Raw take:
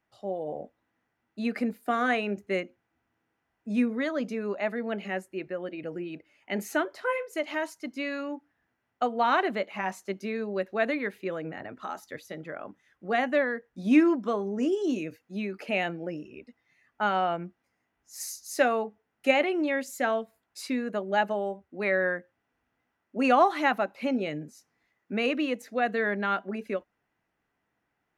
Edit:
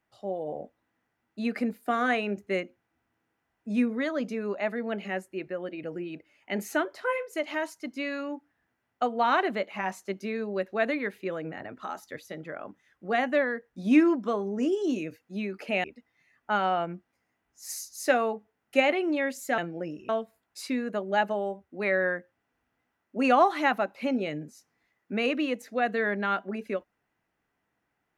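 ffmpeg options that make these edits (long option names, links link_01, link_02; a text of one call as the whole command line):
ffmpeg -i in.wav -filter_complex "[0:a]asplit=4[link_01][link_02][link_03][link_04];[link_01]atrim=end=15.842[link_05];[link_02]atrim=start=16.348:end=20.092[link_06];[link_03]atrim=start=15.838:end=16.352[link_07];[link_04]atrim=start=20.088[link_08];[link_05][link_06]acrossfade=duration=0.004:curve1=hsin:curve2=hsin[link_09];[link_09][link_07]acrossfade=duration=0.004:curve1=hsin:curve2=hsin[link_10];[link_10][link_08]acrossfade=duration=0.004:curve1=hsin:curve2=hsin" out.wav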